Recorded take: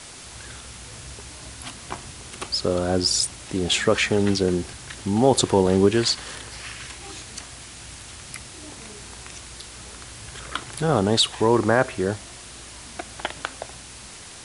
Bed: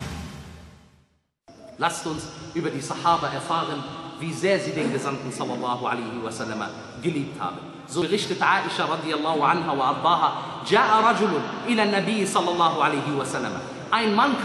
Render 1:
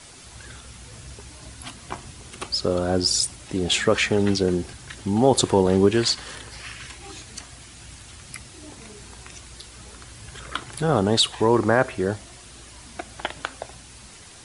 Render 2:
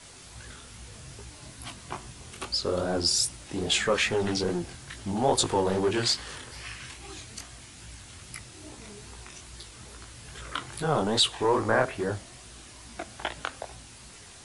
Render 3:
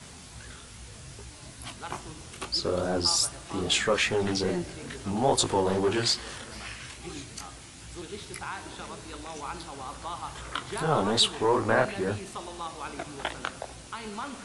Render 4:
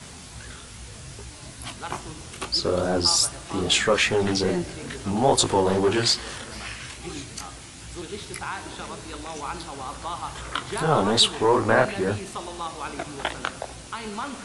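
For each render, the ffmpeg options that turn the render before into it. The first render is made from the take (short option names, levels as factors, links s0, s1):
-af "afftdn=nr=6:nf=-42"
-filter_complex "[0:a]flanger=delay=17:depth=7.7:speed=2.4,acrossover=split=510|5100[s0][s1][s2];[s0]asoftclip=type=tanh:threshold=0.0447[s3];[s3][s1][s2]amix=inputs=3:normalize=0"
-filter_complex "[1:a]volume=0.133[s0];[0:a][s0]amix=inputs=2:normalize=0"
-af "volume=1.68"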